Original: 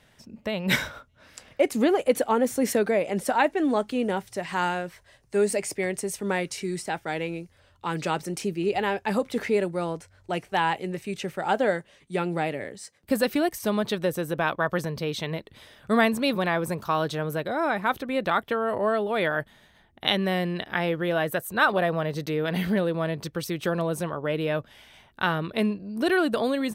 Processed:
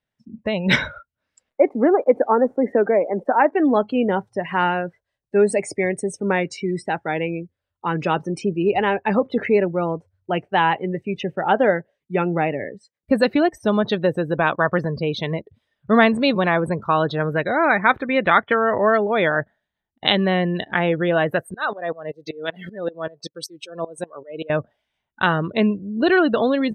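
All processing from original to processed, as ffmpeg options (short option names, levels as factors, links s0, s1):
-filter_complex "[0:a]asettb=1/sr,asplit=3[s0][s1][s2];[s0]atrim=end=1.504[s3];[s1]atrim=start=1.5:end=3.52,asetpts=PTS-STARTPTS,afade=t=in:d=0.004:c=qsin,afade=t=out:st=2.016:d=0.004:c=qsin,acrossover=split=220 2000:gain=0.141 1 0.112[s4][s5][s6];[s4][s5][s6]amix=inputs=3:normalize=0,acrusher=bits=9:dc=4:mix=0:aa=0.000001[s7];[s2]atrim=start=3.516[s8];[s3][s7]acrossfade=d=0.004:c1=hsin:c2=qsin[s9];[s9][s8]acrossfade=d=0.004:c1=qsin:c2=hsin,asettb=1/sr,asplit=3[s10][s11][s12];[s10]atrim=end=17.204[s13];[s11]atrim=start=17.2:end=18.98,asetpts=PTS-STARTPTS,afade=t=in:d=0.004:c=qsin,afade=t=out:st=1.776:d=0.004:c=qsin,equalizer=f=2000:t=o:w=1:g=7,bandreject=f=2700:w=21[s14];[s12]atrim=start=18.976[s15];[s13][s14]acrossfade=d=0.004:c1=hsin:c2=qsin[s16];[s16][s15]acrossfade=d=0.004:c1=qsin:c2=hsin,asettb=1/sr,asplit=3[s17][s18][s19];[s17]atrim=end=21.544[s20];[s18]atrim=start=21.54:end=24.5,asetpts=PTS-STARTPTS,afade=t=in:d=0.004:c=qsin,afade=t=out:st=2.956:d=0.004:c=qsin,bass=f=250:g=-11,treble=f=4000:g=9,aeval=exprs='val(0)*pow(10,-22*if(lt(mod(-5.2*n/s,1),2*abs(-5.2)/1000),1-mod(-5.2*n/s,1)/(2*abs(-5.2)/1000),(mod(-5.2*n/s,1)-2*abs(-5.2)/1000)/(1-2*abs(-5.2)/1000))/20)':c=same[s21];[s19]atrim=start=24.496[s22];[s20][s21]acrossfade=d=0.004:c1=hsin:c2=qsin[s23];[s23][s22]acrossfade=d=0.004:c1=qsin:c2=hsin,highshelf=f=9900:g=-11.5,afftdn=nr=31:nf=-37,volume=2.11"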